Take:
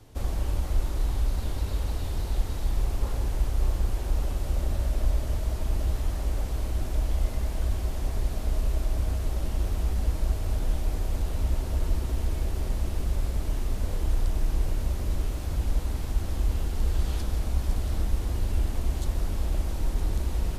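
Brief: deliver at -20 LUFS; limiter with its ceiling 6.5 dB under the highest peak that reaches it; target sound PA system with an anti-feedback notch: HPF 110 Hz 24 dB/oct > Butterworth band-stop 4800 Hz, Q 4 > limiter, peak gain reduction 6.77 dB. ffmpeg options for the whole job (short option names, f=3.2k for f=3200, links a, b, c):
-af "alimiter=limit=-19.5dB:level=0:latency=1,highpass=f=110:w=0.5412,highpass=f=110:w=1.3066,asuperstop=centerf=4800:order=8:qfactor=4,volume=23dB,alimiter=limit=-10.5dB:level=0:latency=1"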